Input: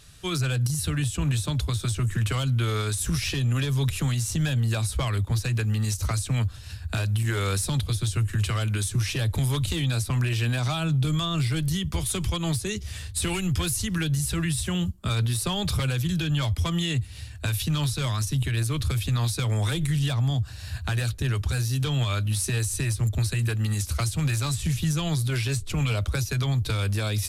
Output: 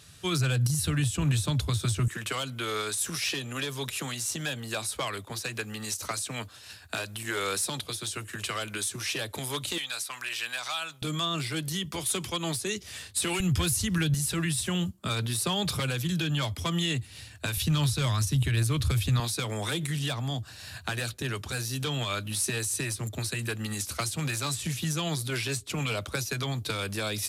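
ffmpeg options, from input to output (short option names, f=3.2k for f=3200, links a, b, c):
-af "asetnsamples=n=441:p=0,asendcmd='2.08 highpass f 330;9.78 highpass f 1000;11.02 highpass f 250;13.4 highpass f 67;14.14 highpass f 170;17.57 highpass f 52;19.2 highpass f 210',highpass=87"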